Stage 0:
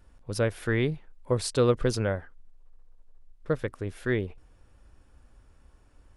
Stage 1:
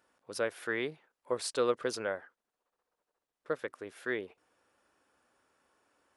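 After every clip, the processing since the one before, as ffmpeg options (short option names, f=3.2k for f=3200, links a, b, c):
-af "highpass=380,equalizer=f=1.4k:w=1.5:g=2.5,volume=-4.5dB"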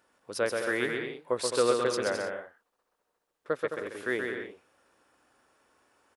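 -af "aecho=1:1:130|214.5|269.4|305.1|328.3:0.631|0.398|0.251|0.158|0.1,volume=3.5dB"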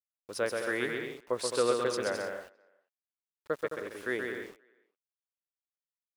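-filter_complex "[0:a]aeval=exprs='val(0)*gte(abs(val(0)),0.00398)':c=same,asplit=2[a][b];[b]adelay=400,highpass=300,lowpass=3.4k,asoftclip=type=hard:threshold=-21.5dB,volume=-29dB[c];[a][c]amix=inputs=2:normalize=0,volume=-2.5dB"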